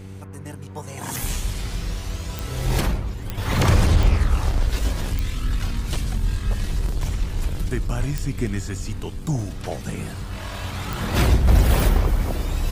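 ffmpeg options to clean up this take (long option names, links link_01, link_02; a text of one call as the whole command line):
ffmpeg -i in.wav -af "adeclick=threshold=4,bandreject=frequency=95.9:width_type=h:width=4,bandreject=frequency=191.8:width_type=h:width=4,bandreject=frequency=287.7:width_type=h:width=4,bandreject=frequency=383.6:width_type=h:width=4,bandreject=frequency=479.5:width_type=h:width=4" out.wav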